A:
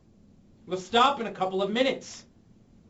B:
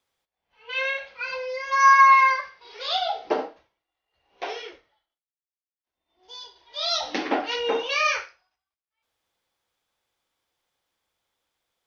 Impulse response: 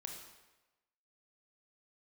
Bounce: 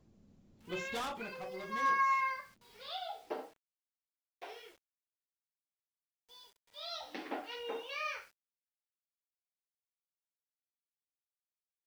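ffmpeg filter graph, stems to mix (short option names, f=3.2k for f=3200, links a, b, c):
-filter_complex "[0:a]volume=27dB,asoftclip=hard,volume=-27dB,volume=-7.5dB,afade=t=out:st=0.8:d=0.68:silence=0.375837[a];[1:a]acrossover=split=5100[b][c];[c]acompressor=threshold=-51dB:ratio=4:attack=1:release=60[d];[b][d]amix=inputs=2:normalize=0,acrusher=bits=7:mix=0:aa=0.000001,volume=-16dB[e];[a][e]amix=inputs=2:normalize=0"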